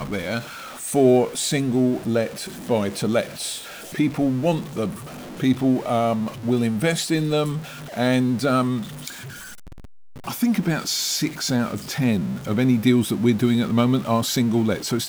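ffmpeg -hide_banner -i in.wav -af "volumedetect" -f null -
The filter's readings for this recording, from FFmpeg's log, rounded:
mean_volume: -22.1 dB
max_volume: -5.0 dB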